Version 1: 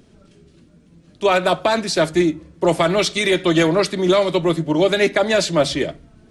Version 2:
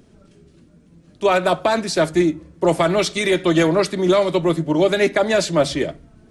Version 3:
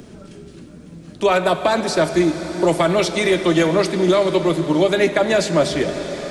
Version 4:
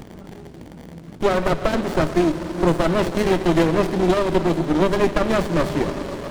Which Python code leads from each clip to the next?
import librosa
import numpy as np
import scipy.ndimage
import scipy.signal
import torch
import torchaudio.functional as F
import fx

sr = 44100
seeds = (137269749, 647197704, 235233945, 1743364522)

y1 = fx.peak_eq(x, sr, hz=3500.0, db=-3.5, octaves=1.5)
y2 = fx.rev_plate(y1, sr, seeds[0], rt60_s=4.7, hf_ratio=0.95, predelay_ms=0, drr_db=9.0)
y2 = fx.band_squash(y2, sr, depth_pct=40)
y3 = fx.dmg_crackle(y2, sr, seeds[1], per_s=150.0, level_db=-33.0)
y3 = fx.running_max(y3, sr, window=33)